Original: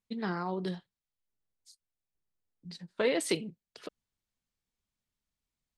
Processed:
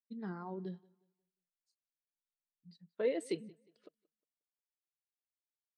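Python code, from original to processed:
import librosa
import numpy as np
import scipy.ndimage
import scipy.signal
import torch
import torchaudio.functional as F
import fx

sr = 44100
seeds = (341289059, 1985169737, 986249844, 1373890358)

p1 = x + fx.echo_feedback(x, sr, ms=179, feedback_pct=47, wet_db=-17.5, dry=0)
p2 = fx.spectral_expand(p1, sr, expansion=1.5)
y = p2 * librosa.db_to_amplitude(-8.0)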